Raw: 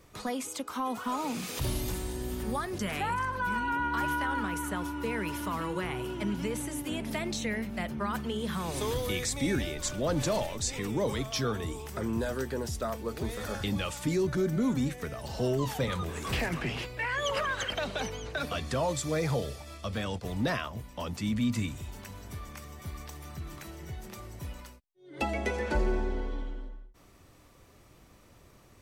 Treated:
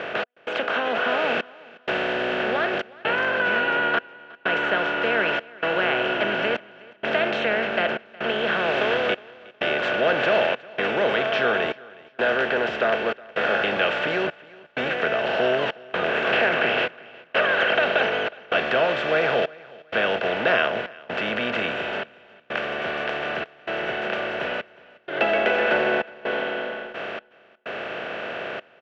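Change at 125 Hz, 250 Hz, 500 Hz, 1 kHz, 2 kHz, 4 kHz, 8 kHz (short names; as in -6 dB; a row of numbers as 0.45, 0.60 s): -7.0 dB, 0.0 dB, +11.5 dB, +8.5 dB, +14.5 dB, +10.0 dB, under -15 dB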